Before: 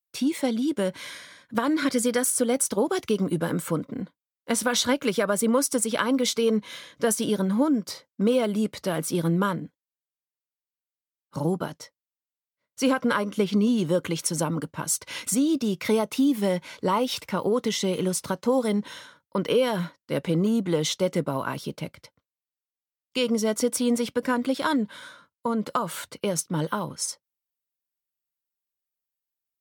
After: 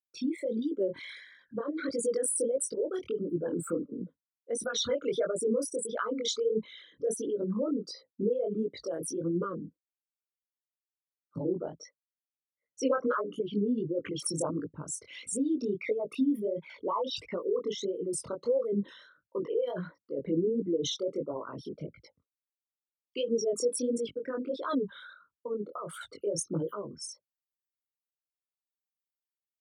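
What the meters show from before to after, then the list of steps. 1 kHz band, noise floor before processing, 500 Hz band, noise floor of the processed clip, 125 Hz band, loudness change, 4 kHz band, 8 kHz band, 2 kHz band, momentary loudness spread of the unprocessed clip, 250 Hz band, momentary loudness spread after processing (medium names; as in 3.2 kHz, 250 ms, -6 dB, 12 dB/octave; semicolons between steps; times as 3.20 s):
-10.5 dB, under -85 dBFS, -4.5 dB, under -85 dBFS, -11.0 dB, -7.0 dB, -8.0 dB, -8.0 dB, -12.0 dB, 10 LU, -9.0 dB, 13 LU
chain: resonances exaggerated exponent 3; rotary cabinet horn 0.75 Hz; chorus 1.5 Hz, delay 17 ms, depth 7.7 ms; trim -2 dB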